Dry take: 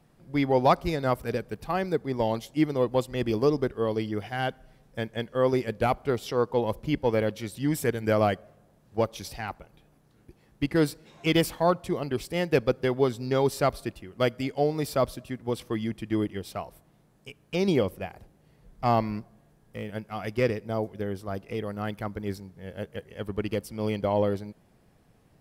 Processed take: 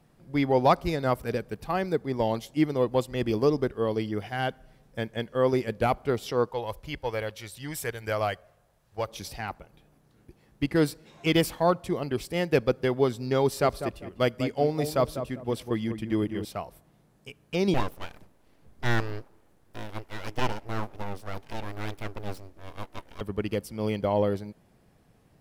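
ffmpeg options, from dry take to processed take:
-filter_complex "[0:a]asettb=1/sr,asplit=3[s0][s1][s2];[s0]atrim=end=6.494[s3];[s1]atrim=start=6.49:end=9.08,asetpts=PTS-STARTPTS,afade=t=in:d=0.004:c=qsin,afade=t=out:st=2.586:d=0.004:c=qsin,equalizer=f=240:t=o:w=1.8:g=-15[s4];[s2]atrim=start=9.076[s5];[s3][s4]acrossfade=d=0.004:c1=hsin:c2=qsin[s6];[s6][s5]acrossfade=d=0.004:c1=qsin:c2=hsin,asettb=1/sr,asplit=3[s7][s8][s9];[s7]atrim=end=13.424[s10];[s8]atrim=start=13.42:end=16.45,asetpts=PTS-STARTPTS,afade=t=in:d=0.004:c=qsin,afade=t=out:st=3.026:d=0.004:c=qsin,asplit=2[s11][s12];[s12]adelay=198,lowpass=f=1200:p=1,volume=0.376,asplit=2[s13][s14];[s14]adelay=198,lowpass=f=1200:p=1,volume=0.28,asplit=2[s15][s16];[s16]adelay=198,lowpass=f=1200:p=1,volume=0.28[s17];[s11][s13][s15][s17]amix=inputs=4:normalize=0,atrim=end_sample=133623[s18];[s9]atrim=start=16.446[s19];[s10][s18]acrossfade=d=0.004:c1=hsin:c2=qsin[s20];[s20][s19]acrossfade=d=0.004:c1=qsin:c2=hsin,asettb=1/sr,asplit=3[s21][s22][s23];[s21]atrim=end=17.744[s24];[s22]atrim=start=17.74:end=23.21,asetpts=PTS-STARTPTS,afade=t=in:d=0.004:c=qsin,afade=t=out:st=5.466:d=0.004:c=qsin,aeval=exprs='abs(val(0))':c=same[s25];[s23]atrim=start=23.206[s26];[s24][s25]acrossfade=d=0.004:c1=hsin:c2=qsin[s27];[s27][s26]acrossfade=d=0.004:c1=qsin:c2=hsin"

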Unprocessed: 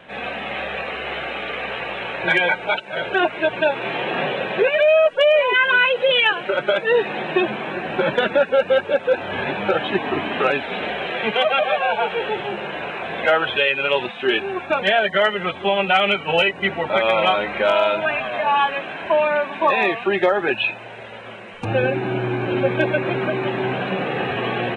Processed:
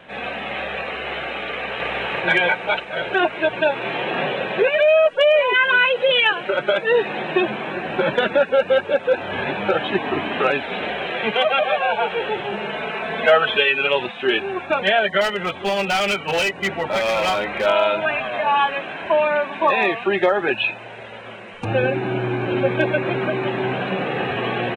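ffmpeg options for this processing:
-filter_complex "[0:a]asplit=2[s0][s1];[s1]afade=t=in:st=1.47:d=0.01,afade=t=out:st=1.88:d=0.01,aecho=0:1:320|640|960|1280|1600|1920|2240|2560|2880|3200|3520:0.944061|0.61364|0.398866|0.259263|0.168521|0.109538|0.0712|0.04628|0.030082|0.0195533|0.0127096[s2];[s0][s2]amix=inputs=2:normalize=0,asettb=1/sr,asplit=3[s3][s4][s5];[s3]atrim=end=12.524[s6];[s4]atrim=start=12.52:end=13.87,asetpts=PTS-STARTPTS,afade=t=in:d=0.004:c=qsin,afade=t=out:st=1.346:d=0.004:c=qsin,aecho=1:1:4.6:0.74,atrim=end_sample=59535[s7];[s5]atrim=start=13.866[s8];[s6][s7]acrossfade=d=0.004:c1=hsin:c2=qsin[s9];[s9][s8]acrossfade=d=0.004:c1=qsin:c2=hsin,asettb=1/sr,asplit=3[s10][s11][s12];[s10]atrim=end=15.214[s13];[s11]atrim=start=15.21:end=17.66,asetpts=PTS-STARTPTS,afade=t=in:d=0.004:c=qsin,afade=t=out:st=2.446:d=0.004:c=qsin,asoftclip=type=hard:threshold=0.15[s14];[s12]atrim=start=17.656[s15];[s13][s14]acrossfade=d=0.004:c1=hsin:c2=qsin[s16];[s16][s15]acrossfade=d=0.004:c1=qsin:c2=hsin"

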